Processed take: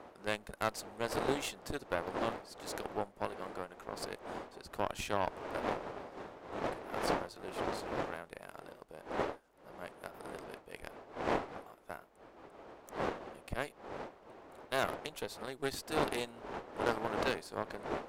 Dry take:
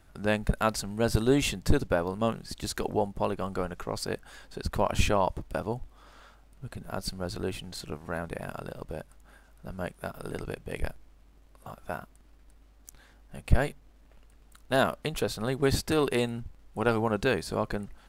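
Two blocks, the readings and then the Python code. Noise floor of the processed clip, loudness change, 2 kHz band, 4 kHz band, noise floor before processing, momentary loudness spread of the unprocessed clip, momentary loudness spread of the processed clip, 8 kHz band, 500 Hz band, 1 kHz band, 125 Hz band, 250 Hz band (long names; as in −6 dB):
−60 dBFS, −8.5 dB, −6.0 dB, −7.5 dB, −57 dBFS, 14 LU, 15 LU, −8.5 dB, −7.5 dB, −4.5 dB, −16.0 dB, −10.5 dB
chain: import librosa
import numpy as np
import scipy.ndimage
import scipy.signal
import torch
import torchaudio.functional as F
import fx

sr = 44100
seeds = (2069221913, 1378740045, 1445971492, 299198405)

y = fx.dmg_wind(x, sr, seeds[0], corner_hz=610.0, level_db=-30.0)
y = fx.bass_treble(y, sr, bass_db=-14, treble_db=1)
y = fx.cheby_harmonics(y, sr, harmonics=(6, 7), levels_db=(-21, -24), full_scale_db=-8.5)
y = F.gain(torch.from_numpy(y), -7.0).numpy()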